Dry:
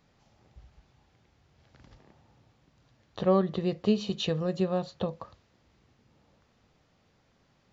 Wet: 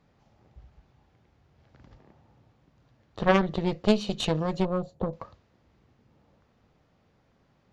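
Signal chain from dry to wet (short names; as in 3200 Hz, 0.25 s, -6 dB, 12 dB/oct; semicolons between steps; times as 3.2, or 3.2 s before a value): 4.65–5.13 band shelf 2500 Hz -15.5 dB 2.9 oct; added harmonics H 3 -9 dB, 4 -15 dB, 5 -17 dB, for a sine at -13 dBFS; mismatched tape noise reduction decoder only; gain +6 dB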